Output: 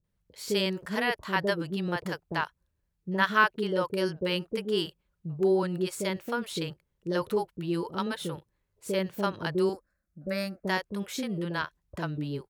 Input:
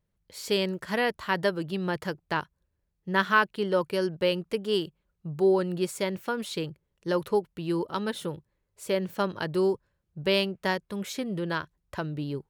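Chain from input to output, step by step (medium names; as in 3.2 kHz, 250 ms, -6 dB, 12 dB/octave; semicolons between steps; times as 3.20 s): 9.69–10.64 s: static phaser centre 620 Hz, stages 8; bands offset in time lows, highs 40 ms, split 530 Hz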